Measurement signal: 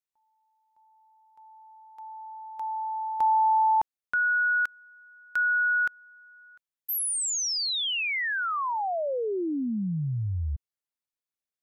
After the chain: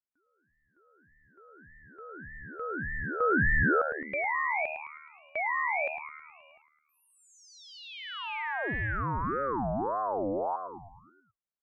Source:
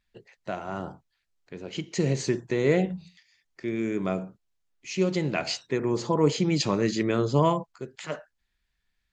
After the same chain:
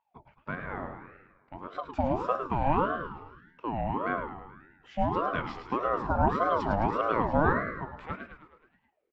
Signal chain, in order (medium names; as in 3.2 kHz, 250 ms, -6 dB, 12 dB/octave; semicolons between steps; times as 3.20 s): low-pass 1.4 kHz 12 dB/octave; on a send: frequency-shifting echo 106 ms, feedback 56%, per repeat +76 Hz, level -8 dB; on the sum: ring modulator with a swept carrier 650 Hz, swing 40%, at 1.7 Hz